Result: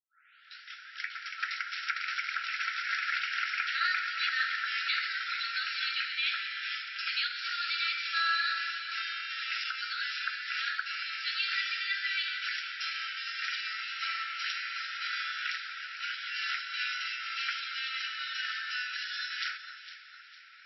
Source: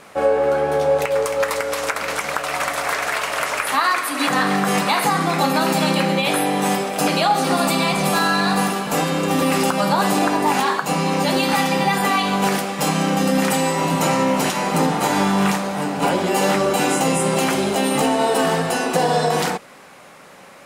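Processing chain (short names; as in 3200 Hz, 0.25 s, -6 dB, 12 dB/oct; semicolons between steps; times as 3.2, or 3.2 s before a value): tape start at the beginning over 1.22 s; echo with dull and thin repeats by turns 0.228 s, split 1800 Hz, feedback 64%, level -8.5 dB; FFT band-pass 1300–5700 Hz; gain -7.5 dB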